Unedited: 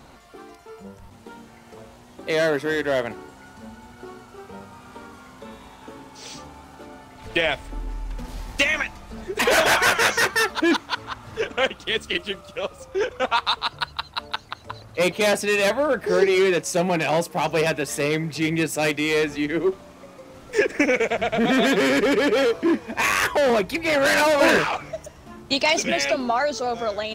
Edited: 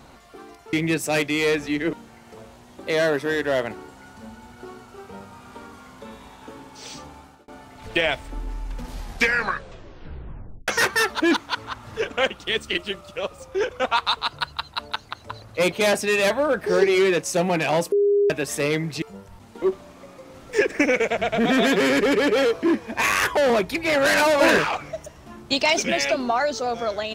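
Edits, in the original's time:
0.73–1.33 s: swap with 18.42–19.62 s
6.46–6.88 s: fade out equal-power
8.37 s: tape stop 1.71 s
17.32–17.70 s: bleep 406 Hz -15 dBFS

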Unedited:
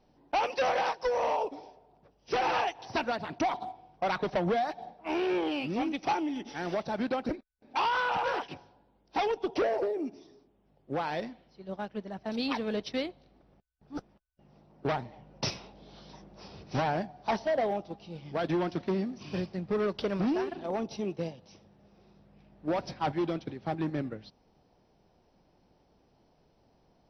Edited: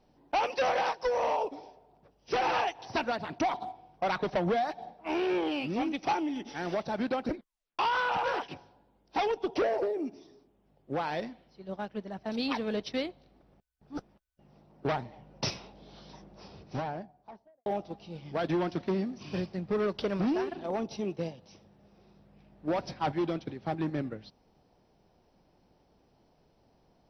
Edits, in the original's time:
7.36 s: tape stop 0.43 s
16.13–17.66 s: studio fade out

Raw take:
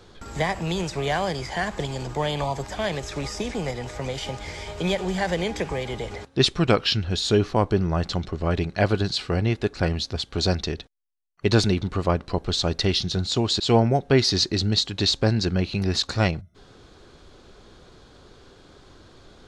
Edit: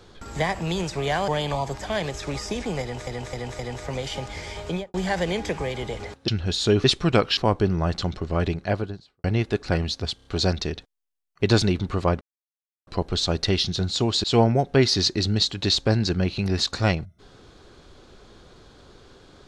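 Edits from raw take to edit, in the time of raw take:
1.28–2.17 s: delete
3.70–3.96 s: loop, 4 plays
4.76–5.05 s: studio fade out
6.39–6.92 s: move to 7.48 s
8.52–9.35 s: studio fade out
10.27 s: stutter 0.03 s, 4 plays
12.23 s: insert silence 0.66 s

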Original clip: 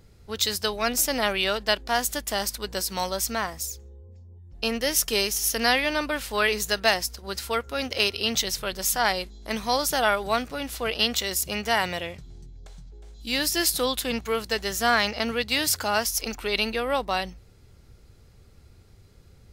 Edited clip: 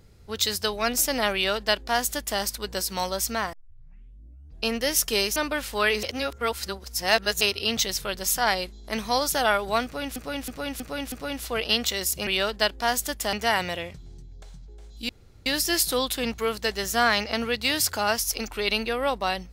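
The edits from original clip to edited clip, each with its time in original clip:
1.34–2.40 s: copy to 11.57 s
3.53 s: tape start 1.12 s
5.36–5.94 s: delete
6.61–7.99 s: reverse
10.42–10.74 s: loop, 5 plays
13.33 s: insert room tone 0.37 s

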